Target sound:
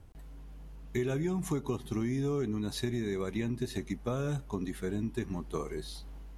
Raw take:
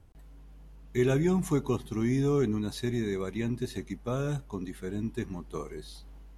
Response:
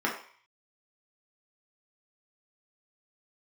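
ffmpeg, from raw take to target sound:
-af "acompressor=threshold=0.0251:ratio=6,volume=1.41"

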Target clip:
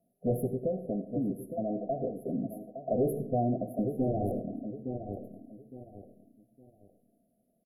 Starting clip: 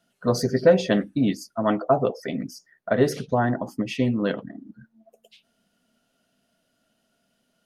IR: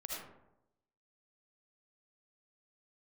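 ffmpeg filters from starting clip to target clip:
-filter_complex "[0:a]asettb=1/sr,asplit=3[s0][s1][s2];[s0]atrim=end=0.454[s3];[s1]atrim=start=0.45:end=2.3,asetpts=PTS-STARTPTS,afade=t=in:d=0.004:c=qsin,afade=t=out:st=1.846:d=0.004:c=qsin,acompressor=threshold=0.0562:ratio=6[s4];[s2]atrim=start=2.296[s5];[s3][s4]acrossfade=d=0.004:c1=hsin:c2=qsin[s6];[s6][s5]acrossfade=d=0.004:c1=qsin:c2=hsin,asplit=3[s7][s8][s9];[s7]afade=t=out:st=4.02:d=0.02[s10];[s8]aeval=exprs='0.316*(cos(1*acos(clip(val(0)/0.316,-1,1)))-cos(1*PI/2))+0.0562*(cos(5*acos(clip(val(0)/0.316,-1,1)))-cos(5*PI/2))+0.158*(cos(7*acos(clip(val(0)/0.316,-1,1)))-cos(7*PI/2))':c=same,afade=t=in:st=4.02:d=0.02,afade=t=out:st=4.66:d=0.02[s11];[s9]afade=t=in:st=4.66:d=0.02[s12];[s10][s11][s12]amix=inputs=3:normalize=0,asplit=2[s13][s14];[s14]adelay=862,lowpass=f=1900:p=1,volume=0.266,asplit=2[s15][s16];[s16]adelay=862,lowpass=f=1900:p=1,volume=0.28,asplit=2[s17][s18];[s18]adelay=862,lowpass=f=1900:p=1,volume=0.28[s19];[s13][s15][s17][s19]amix=inputs=4:normalize=0,asoftclip=type=tanh:threshold=0.106,asplit=2[s20][s21];[1:a]atrim=start_sample=2205[s22];[s21][s22]afir=irnorm=-1:irlink=0,volume=0.266[s23];[s20][s23]amix=inputs=2:normalize=0,afftfilt=real='re*(1-between(b*sr/4096,770,10000))':imag='im*(1-between(b*sr/4096,770,10000))':win_size=4096:overlap=0.75,volume=0.668"

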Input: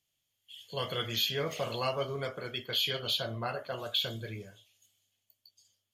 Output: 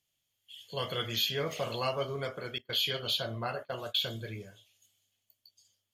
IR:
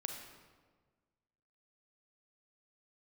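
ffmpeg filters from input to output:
-filter_complex "[0:a]asettb=1/sr,asplit=3[s0][s1][s2];[s0]atrim=end=2.584[s3];[s1]atrim=start=2.58:end=4.08,asetpts=PTS-STARTPTS,afade=t=in:d=0.004:c=qsin,afade=t=out:st=1.496:d=0.004:c=qsin,agate=range=0.0708:threshold=0.01:ratio=16:detection=peak[s4];[s2]atrim=start=4.076[s5];[s3][s4]acrossfade=d=0.004:c1=hsin:c2=qsin[s6];[s6][s5]acrossfade=d=0.004:c1=qsin:c2=hsin"

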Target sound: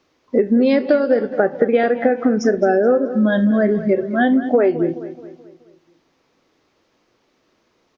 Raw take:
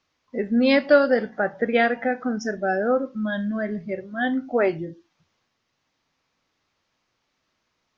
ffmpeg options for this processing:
-filter_complex "[0:a]equalizer=f=380:t=o:w=1.6:g=12,acompressor=threshold=0.126:ratio=12,asplit=2[s0][s1];[s1]adelay=214,lowpass=f=4100:p=1,volume=0.211,asplit=2[s2][s3];[s3]adelay=214,lowpass=f=4100:p=1,volume=0.48,asplit=2[s4][s5];[s5]adelay=214,lowpass=f=4100:p=1,volume=0.48,asplit=2[s6][s7];[s7]adelay=214,lowpass=f=4100:p=1,volume=0.48,asplit=2[s8][s9];[s9]adelay=214,lowpass=f=4100:p=1,volume=0.48[s10];[s2][s4][s6][s8][s10]amix=inputs=5:normalize=0[s11];[s0][s11]amix=inputs=2:normalize=0,volume=2.11"

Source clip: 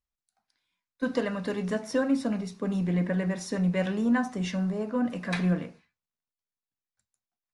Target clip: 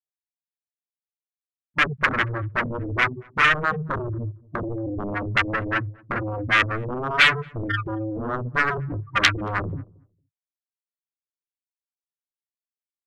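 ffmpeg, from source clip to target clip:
-filter_complex "[0:a]acrossover=split=3300[s0][s1];[s1]acompressor=threshold=0.00251:ratio=4:attack=1:release=60[s2];[s0][s2]amix=inputs=2:normalize=0,afftfilt=real='re*gte(hypot(re,im),0.0631)':imag='im*gte(hypot(re,im),0.0631)':win_size=1024:overlap=0.75,agate=range=0.282:threshold=0.0178:ratio=16:detection=peak,highshelf=f=4600:g=-9.5,asplit=2[s3][s4];[s4]alimiter=level_in=1.26:limit=0.0631:level=0:latency=1:release=469,volume=0.794,volume=1.26[s5];[s3][s5]amix=inputs=2:normalize=0,aeval=exprs='0.211*sin(PI/2*5.01*val(0)/0.211)':c=same,aexciter=amount=7.9:drive=7.2:freq=2100,asplit=2[s6][s7];[s7]adelay=131,lowpass=f=1200:p=1,volume=0.0708,asplit=2[s8][s9];[s9]adelay=131,lowpass=f=1200:p=1,volume=0.15[s10];[s8][s10]amix=inputs=2:normalize=0[s11];[s6][s11]amix=inputs=2:normalize=0,asetrate=25442,aresample=44100,volume=0.251"

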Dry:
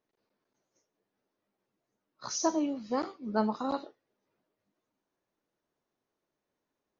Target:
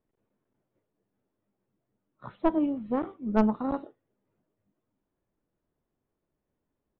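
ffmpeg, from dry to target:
-filter_complex "[0:a]aresample=8000,aresample=44100,asplit=2[s0][s1];[s1]acrusher=bits=2:mix=0:aa=0.5,volume=0.355[s2];[s0][s2]amix=inputs=2:normalize=0,aemphasis=mode=reproduction:type=riaa,aeval=exprs='0.398*(cos(1*acos(clip(val(0)/0.398,-1,1)))-cos(1*PI/2))+0.0126*(cos(7*acos(clip(val(0)/0.398,-1,1)))-cos(7*PI/2))':c=same"

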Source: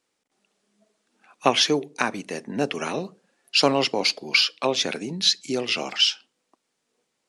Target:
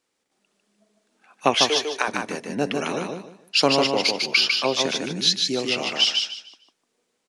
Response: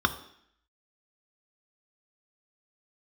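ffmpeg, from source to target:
-filter_complex "[0:a]asettb=1/sr,asplit=3[s0][s1][s2];[s0]atrim=end=1.544[s3];[s1]atrim=start=1.54:end=2.08,asetpts=PTS-STARTPTS,afade=t=in:d=0.004:c=qsin,afade=t=out:st=0.536:d=0.004:c=qsin,highpass=f=410:w=0.5412,highpass=f=410:w=1.3066[s4];[s2]atrim=start=2.076[s5];[s3][s4]acrossfade=d=0.004:c1=hsin:c2=qsin[s6];[s6][s5]acrossfade=d=0.004:c1=qsin:c2=hsin,aecho=1:1:150|300|450|600:0.631|0.164|0.0427|0.0111"

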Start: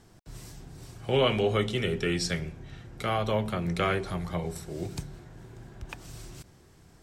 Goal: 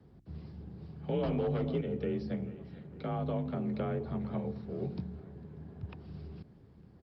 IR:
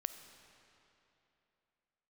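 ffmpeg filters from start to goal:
-filter_complex "[0:a]asplit=2[s0][s1];[s1]adelay=452,lowpass=f=3000:p=1,volume=0.1,asplit=2[s2][s3];[s3]adelay=452,lowpass=f=3000:p=1,volume=0.46,asplit=2[s4][s5];[s5]adelay=452,lowpass=f=3000:p=1,volume=0.46[s6];[s0][s2][s4][s6]amix=inputs=4:normalize=0,asettb=1/sr,asplit=3[s7][s8][s9];[s7]atrim=end=1.234[s10];[s8]atrim=start=1.23:end=1.81,asetpts=PTS-STARTPTS,afade=t=in:d=0.004:c=qsin,afade=t=out:st=0.576:d=0.004:c=qsin,acontrast=87[s11];[s9]atrim=start=1.806[s12];[s10][s11]acrossfade=d=0.004:c1=hsin:c2=qsin[s13];[s13][s12]acrossfade=d=0.004:c1=qsin:c2=hsin,asettb=1/sr,asplit=3[s14][s15][s16];[s14]atrim=end=2.444[s17];[s15]atrim=start=2.44:end=3.1,asetpts=PTS-STARTPTS,afade=t=in:d=0.004:c=qsin,afade=t=out:st=0.656:d=0.004:c=qsin,lowshelf=f=62:g=-9[s18];[s16]atrim=start=3.096[s19];[s17][s18]acrossfade=d=0.004:c1=hsin:c2=qsin[s20];[s20][s19]acrossfade=d=0.004:c1=qsin:c2=hsin,aeval=exprs='0.2*(abs(mod(val(0)/0.2+3,4)-2)-1)':c=same,tiltshelf=f=800:g=6.5,acrossover=split=340|1100[s21][s22][s23];[s21]acompressor=threshold=0.0501:ratio=4[s24];[s22]acompressor=threshold=0.0355:ratio=4[s25];[s23]acompressor=threshold=0.00562:ratio=4[s26];[s24][s25][s26]amix=inputs=3:normalize=0,aeval=exprs='val(0)+0.001*(sin(2*PI*60*n/s)+sin(2*PI*2*60*n/s)/2+sin(2*PI*3*60*n/s)/3+sin(2*PI*4*60*n/s)/4+sin(2*PI*5*60*n/s)/5)':c=same,asettb=1/sr,asplit=3[s27][s28][s29];[s27]atrim=end=4.764[s30];[s28]atrim=start=4.76:end=5.43,asetpts=PTS-STARTPTS,afade=t=in:d=0.004:c=qsin,afade=t=out:st=0.666:d=0.004:c=qsin,asplit=2[s31][s32];[s32]adelay=21,volume=0.282[s33];[s31][s33]amix=inputs=2:normalize=0,atrim=end_sample=29547[s34];[s29]atrim=start=5.426[s35];[s30][s34]acrossfade=d=0.004:c1=hsin:c2=qsin[s36];[s36][s35]acrossfade=d=0.004:c1=qsin:c2=hsin,aresample=11025,aresample=44100,afreqshift=38,volume=0.473" -ar 48000 -c:a libopus -b:a 32k

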